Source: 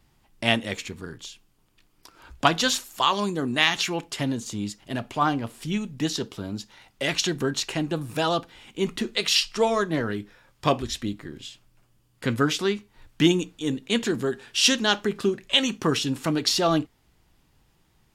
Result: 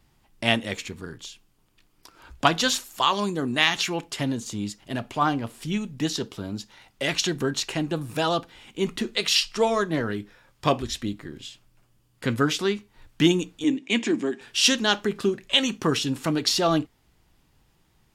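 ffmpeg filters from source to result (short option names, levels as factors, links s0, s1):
-filter_complex "[0:a]asettb=1/sr,asplit=3[s0][s1][s2];[s0]atrim=end=13.644[s3];[s1]atrim=start=13.64:end=14.41,asetpts=PTS-STARTPTS,afade=t=in:d=0.004:c=qsin,afade=t=out:st=0.766:d=0.004:c=qsin,highpass=f=190:w=0.5412,highpass=f=190:w=1.3066,equalizer=f=310:t=q:w=4:g=8,equalizer=f=460:t=q:w=4:g=-7,equalizer=f=1400:t=q:w=4:g=-8,equalizer=f=2300:t=q:w=4:g=8,equalizer=f=4200:t=q:w=4:g=-7,lowpass=f=8100:w=0.5412,lowpass=f=8100:w=1.3066[s4];[s2]atrim=start=14.406[s5];[s3][s4]acrossfade=d=0.004:c1=hsin:c2=qsin[s6];[s6][s5]acrossfade=d=0.004:c1=qsin:c2=hsin"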